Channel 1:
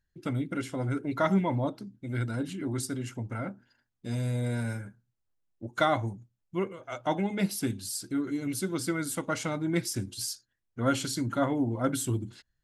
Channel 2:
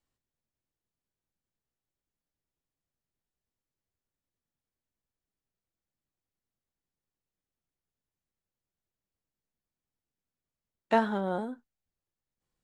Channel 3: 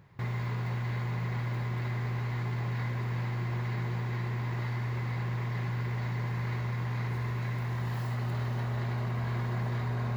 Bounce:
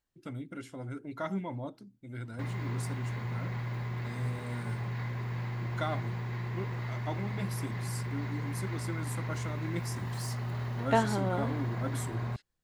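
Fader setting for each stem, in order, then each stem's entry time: -9.5, -1.5, -3.0 dB; 0.00, 0.00, 2.20 s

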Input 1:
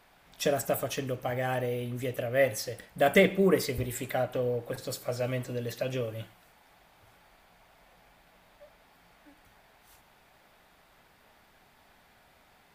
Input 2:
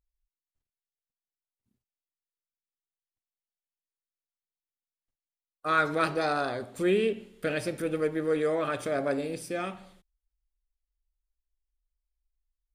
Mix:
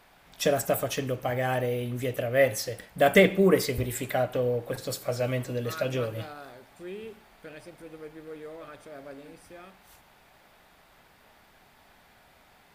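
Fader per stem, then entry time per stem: +3.0, -15.0 dB; 0.00, 0.00 s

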